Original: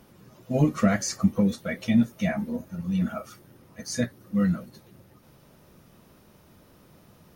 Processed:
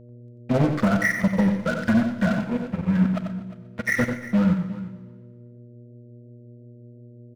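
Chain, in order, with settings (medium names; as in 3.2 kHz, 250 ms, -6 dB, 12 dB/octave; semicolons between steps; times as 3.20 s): knee-point frequency compression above 1.3 kHz 4:1; expander -51 dBFS; in parallel at +1 dB: peak limiter -17.5 dBFS, peak gain reduction 8.5 dB; on the sum: transient shaper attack +8 dB, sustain -6 dB; crossover distortion -28.5 dBFS; mains buzz 120 Hz, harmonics 5, -47 dBFS -5 dB/octave; saturation -15 dBFS, distortion -7 dB; on a send: multi-tap echo 91/353 ms -7/-17.5 dB; on the sum: Schroeder reverb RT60 1.4 s, combs from 33 ms, DRR 13 dB; modulated delay 121 ms, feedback 51%, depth 121 cents, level -17 dB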